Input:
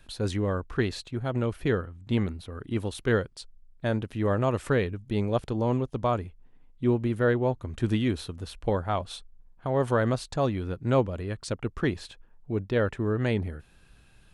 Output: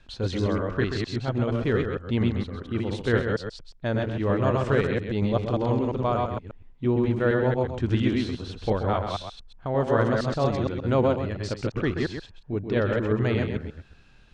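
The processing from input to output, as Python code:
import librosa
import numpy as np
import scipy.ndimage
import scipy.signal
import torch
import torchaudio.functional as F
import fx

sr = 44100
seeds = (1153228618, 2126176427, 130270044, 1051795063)

p1 = fx.reverse_delay(x, sr, ms=116, wet_db=-2)
p2 = scipy.signal.sosfilt(scipy.signal.butter(4, 6400.0, 'lowpass', fs=sr, output='sos'), p1)
y = p2 + fx.echo_single(p2, sr, ms=131, db=-7.5, dry=0)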